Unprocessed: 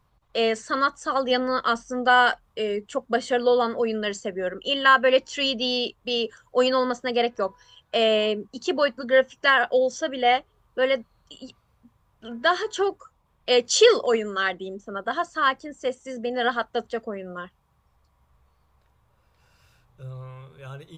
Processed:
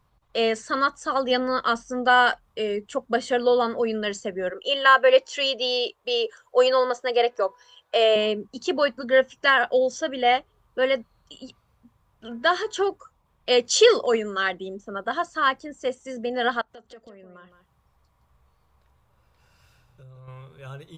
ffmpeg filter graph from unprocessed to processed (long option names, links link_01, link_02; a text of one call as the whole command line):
ffmpeg -i in.wav -filter_complex "[0:a]asettb=1/sr,asplit=3[link_01][link_02][link_03];[link_01]atrim=end=4.504[link_04];[link_02]atrim=start=4.5:end=8.16,asetpts=PTS-STARTPTS,afade=type=in:duration=0.004:curve=qsin,afade=type=out:start_time=3.656:duration=0.004:curve=qsin,highpass=42,lowshelf=frequency=310:width_type=q:width=1.5:gain=-12.5[link_05];[link_03]atrim=start=8.156[link_06];[link_04][link_05]acrossfade=duration=0.004:curve1=hsin:curve2=qsin[link_07];[link_07][link_06]acrossfade=duration=0.004:curve1=qsin:curve2=hsin,asettb=1/sr,asplit=3[link_08][link_09][link_10];[link_08]atrim=end=16.614[link_11];[link_09]atrim=start=16.61:end=20.28,asetpts=PTS-STARTPTS,afade=type=in:duration=0.004:curve=qsin,afade=type=out:start_time=3.666:duration=0.004:curve=qsin,acompressor=threshold=-46dB:ratio=4:attack=3.2:release=140:knee=1:detection=peak,aecho=1:1:164:0.316,atrim=end_sample=161847[link_12];[link_10]atrim=start=20.276[link_13];[link_11][link_12]acrossfade=duration=0.004:curve1=hsin:curve2=qsin[link_14];[link_14][link_13]acrossfade=duration=0.004:curve1=qsin:curve2=hsin" out.wav